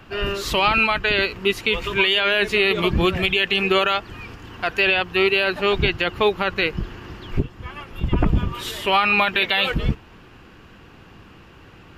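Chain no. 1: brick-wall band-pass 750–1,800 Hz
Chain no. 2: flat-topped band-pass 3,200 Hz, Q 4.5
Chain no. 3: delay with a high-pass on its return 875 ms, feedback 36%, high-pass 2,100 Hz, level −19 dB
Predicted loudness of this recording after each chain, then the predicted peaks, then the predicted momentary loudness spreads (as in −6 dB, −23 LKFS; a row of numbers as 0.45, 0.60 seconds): −27.5, −28.0, −20.0 LKFS; −9.0, −12.5, −7.5 dBFS; 21, 19, 15 LU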